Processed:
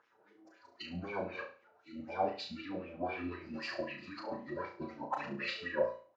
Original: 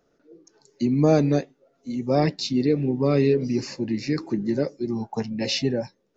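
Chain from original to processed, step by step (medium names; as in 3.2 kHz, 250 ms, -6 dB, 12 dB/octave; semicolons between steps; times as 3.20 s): peaking EQ 76 Hz +3 dB 0.4 oct; band-stop 1.8 kHz, Q 28; comb 5.8 ms, depth 52%; dynamic bell 830 Hz, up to +5 dB, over -46 dBFS, Q 4.1; in parallel at 0 dB: compression 6:1, threshold -35 dBFS, peak gain reduction 21 dB; on the sum: peak limiter -17 dBFS, peak gain reduction 11 dB; phaser 1.9 Hz, delay 2.3 ms, feedback 36%; formant-preserving pitch shift -7.5 st; feedback comb 980 Hz, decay 0.34 s, mix 70%; wah-wah 3.9 Hz 590–2500 Hz, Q 4.3; flutter echo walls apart 5.9 m, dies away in 0.39 s; trim +14.5 dB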